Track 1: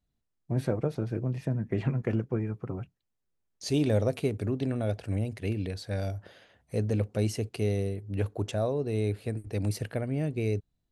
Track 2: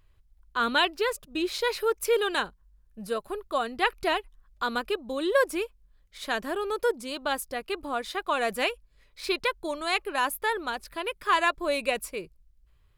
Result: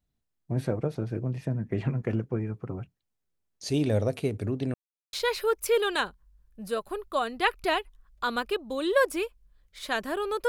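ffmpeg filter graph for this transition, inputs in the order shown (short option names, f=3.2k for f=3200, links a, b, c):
-filter_complex "[0:a]apad=whole_dur=10.48,atrim=end=10.48,asplit=2[a][b];[a]atrim=end=4.74,asetpts=PTS-STARTPTS,afade=t=out:st=4.736:d=0.004:c=hsin[c];[b]atrim=start=4.74:end=5.13,asetpts=PTS-STARTPTS,volume=0[d];[1:a]atrim=start=1.52:end=6.87,asetpts=PTS-STARTPTS,afade=t=in:d=0.004:c=hsin[e];[c][d][e]concat=n=3:v=0:a=1"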